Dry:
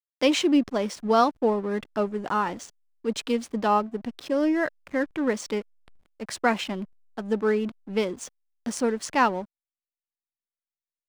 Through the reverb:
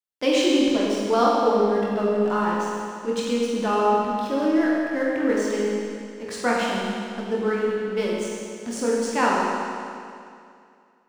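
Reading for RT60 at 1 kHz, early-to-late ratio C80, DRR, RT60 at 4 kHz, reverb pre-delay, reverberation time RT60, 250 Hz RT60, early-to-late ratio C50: 2.4 s, -0.5 dB, -5.0 dB, 2.3 s, 19 ms, 2.4 s, 2.4 s, -2.0 dB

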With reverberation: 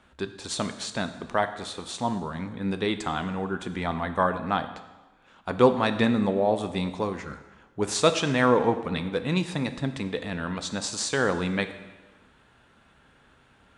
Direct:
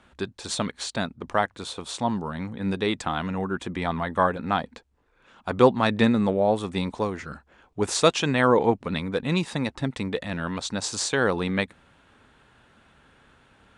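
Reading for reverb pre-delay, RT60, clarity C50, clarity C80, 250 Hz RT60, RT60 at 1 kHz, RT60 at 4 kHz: 5 ms, 1.2 s, 11.5 dB, 13.0 dB, 1.2 s, 1.2 s, 1.1 s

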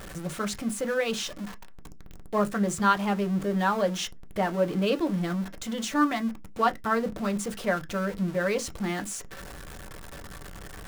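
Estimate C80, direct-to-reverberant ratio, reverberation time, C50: 38.5 dB, 6.0 dB, no single decay rate, 28.0 dB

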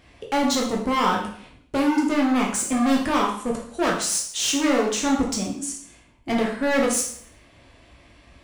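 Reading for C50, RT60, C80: 5.0 dB, 0.60 s, 9.0 dB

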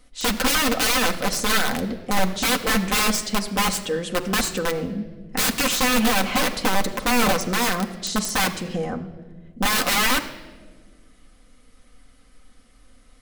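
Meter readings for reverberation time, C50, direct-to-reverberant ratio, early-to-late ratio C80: no single decay rate, 12.5 dB, 2.0 dB, 13.5 dB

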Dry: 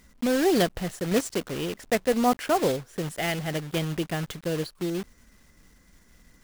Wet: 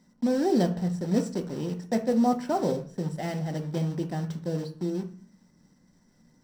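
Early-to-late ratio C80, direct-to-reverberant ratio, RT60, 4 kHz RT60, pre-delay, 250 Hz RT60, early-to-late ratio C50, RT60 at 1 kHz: 17.0 dB, 4.5 dB, 0.45 s, 0.40 s, 3 ms, 0.75 s, 11.5 dB, 0.40 s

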